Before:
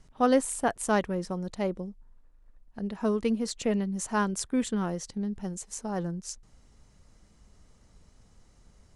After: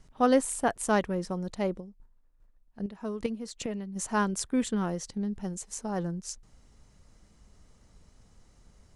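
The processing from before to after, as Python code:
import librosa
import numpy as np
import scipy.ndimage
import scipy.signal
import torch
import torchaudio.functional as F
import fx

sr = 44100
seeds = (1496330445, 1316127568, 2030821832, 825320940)

y = fx.chopper(x, sr, hz=2.5, depth_pct=60, duty_pct=15, at=(1.79, 3.95), fade=0.02)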